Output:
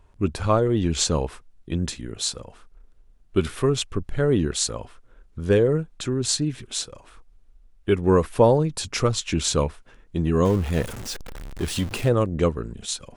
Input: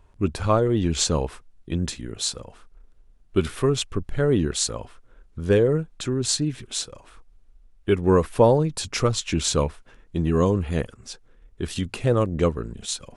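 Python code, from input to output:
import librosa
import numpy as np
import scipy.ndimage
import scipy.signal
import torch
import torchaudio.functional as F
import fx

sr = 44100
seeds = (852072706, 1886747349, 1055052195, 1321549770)

y = fx.zero_step(x, sr, step_db=-30.0, at=(10.45, 12.09))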